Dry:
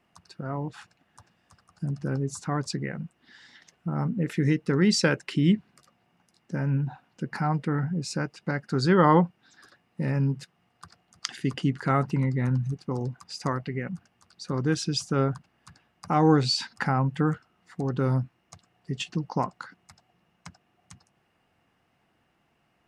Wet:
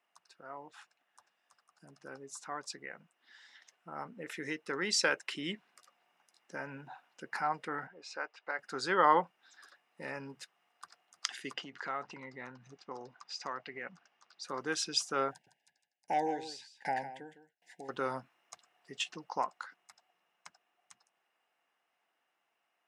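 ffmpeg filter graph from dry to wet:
-filter_complex "[0:a]asettb=1/sr,asplit=3[a][b][c];[a]atrim=end=7.874[d];[b]atrim=start=7.87:end=8.59,asetpts=PTS-STARTPTS,afade=t=in:d=0.004:c=qsin,afade=t=out:st=0.716:d=0.004:c=qsin,highpass=460,lowpass=5k,aemphasis=mode=reproduction:type=50kf[e];[c]atrim=start=8.586[f];[d][e]acrossfade=d=0.004:c1=hsin:c2=qsin[g];[g][f]acrossfade=d=0.004:c1=qsin:c2=hsin,asettb=1/sr,asplit=3[h][i][j];[h]atrim=end=11.534[k];[i]atrim=start=11.53:end=14.43,asetpts=PTS-STARTPTS,afade=t=in:d=0.004:c=qsin,afade=t=out:st=2.896:d=0.004:c=qsin,lowpass=f=6.2k:w=0.5412,lowpass=f=6.2k:w=1.3066,acompressor=threshold=-26dB:ratio=5:attack=3.2:release=140:knee=1:detection=peak[l];[j]atrim=start=14.426[m];[k][l]acrossfade=d=0.004:c1=hsin:c2=qsin[n];[n][m]acrossfade=d=0.004:c1=qsin:c2=hsin,asettb=1/sr,asplit=3[o][p][q];[o]atrim=end=15.314[r];[p]atrim=start=15.31:end=17.89,asetpts=PTS-STARTPTS,afade=t=in:d=0.004:c=qsin,afade=t=out:st=2.576:d=0.004:c=qsin,asuperstop=centerf=1200:order=8:qfactor=1.7,aecho=1:1:157:0.501,atrim=end_sample=113778,aeval=exprs='val(0)*pow(10,-28*if(lt(mod(1.3*n/s,1),2*abs(1.3)/1000),1-mod(1.3*n/s,1)/(2*abs(1.3)/1000),(mod(1.3*n/s,1)-2*abs(1.3)/1000)/(1-2*abs(1.3)/1000))/20)':c=same[s];[q]atrim=start=17.886[t];[r][s]acrossfade=d=0.004:c1=hsin:c2=qsin[u];[u][t]acrossfade=d=0.004:c1=qsin:c2=hsin,highpass=630,bandreject=f=4.5k:w=15,dynaudnorm=f=440:g=21:m=11.5dB,volume=-8dB"

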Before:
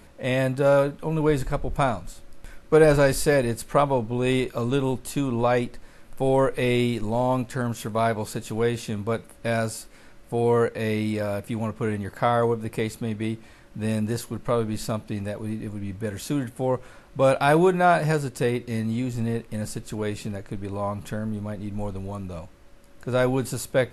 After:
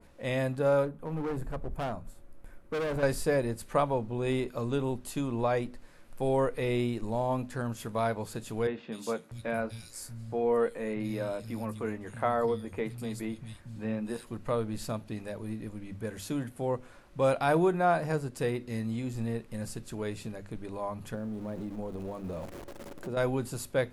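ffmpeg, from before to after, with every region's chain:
-filter_complex "[0:a]asettb=1/sr,asplit=3[a][b][c];[a]atrim=end=0.854[d];[b]atrim=start=0.85:end=3.03,asetpts=PTS-STARTPTS,afade=t=in:d=0.004:c=qsin,afade=t=out:st=2.176:d=0.004:c=qsin,equalizer=f=4.6k:w=0.5:g=-12,asoftclip=type=hard:threshold=-23dB[e];[c]atrim=start=3.026[f];[d][e]acrossfade=d=0.004:c1=hsin:c2=qsin[g];[g][f]acrossfade=d=0.004:c1=qsin:c2=hsin,asettb=1/sr,asplit=3[h][i][j];[h]atrim=end=8.674[k];[i]atrim=start=8.67:end=14.27,asetpts=PTS-STARTPTS,afade=t=in:d=0.004:c=qsin,afade=t=out:st=5.596:d=0.004:c=qsin,asplit=2[l][m];[m]adelay=13,volume=-12dB[n];[l][n]amix=inputs=2:normalize=0,atrim=end_sample=246960,acrossover=split=160|3200[o][p][q];[q]adelay=250[r];[o]adelay=640[s];[s][p][r]amix=inputs=3:normalize=0,atrim=end_sample=246960[t];[j]atrim=start=14.266[u];[k][t]acrossfade=d=0.004:c1=hsin:c2=qsin[v];[v][u]acrossfade=d=0.004:c1=qsin:c2=hsin,asettb=1/sr,asplit=3[w][x][y];[w]atrim=end=21.144[z];[x]atrim=start=21.14:end=23.17,asetpts=PTS-STARTPTS,afade=t=in:d=0.004:c=qsin,afade=t=out:st=2.026:d=0.004:c=qsin,aeval=exprs='val(0)+0.5*0.0133*sgn(val(0))':c=same,equalizer=f=380:t=o:w=2.6:g=10,acompressor=threshold=-27dB:ratio=5:attack=3.2:release=140:knee=1:detection=peak[aa];[y]atrim=start=23.166[ab];[z][aa]acrossfade=d=0.004:c1=hsin:c2=qsin[ac];[ac][ab]acrossfade=d=0.004:c1=qsin:c2=hsin,bandreject=f=50:t=h:w=6,bandreject=f=100:t=h:w=6,bandreject=f=150:t=h:w=6,bandreject=f=200:t=h:w=6,bandreject=f=250:t=h:w=6,adynamicequalizer=threshold=0.0141:dfrequency=1600:dqfactor=0.7:tfrequency=1600:tqfactor=0.7:attack=5:release=100:ratio=0.375:range=3:mode=cutabove:tftype=highshelf,volume=-6.5dB"

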